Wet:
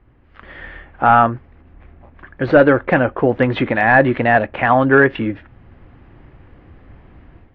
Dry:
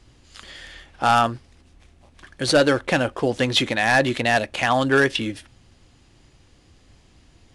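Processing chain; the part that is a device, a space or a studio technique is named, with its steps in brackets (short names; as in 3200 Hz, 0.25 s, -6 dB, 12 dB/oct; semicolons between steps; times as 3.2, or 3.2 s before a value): action camera in a waterproof case (LPF 2000 Hz 24 dB/oct; AGC gain up to 11 dB; AAC 48 kbps 32000 Hz)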